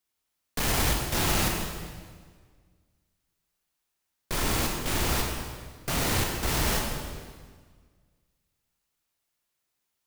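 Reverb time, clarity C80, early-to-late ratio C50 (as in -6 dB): 1.6 s, 4.0 dB, 2.5 dB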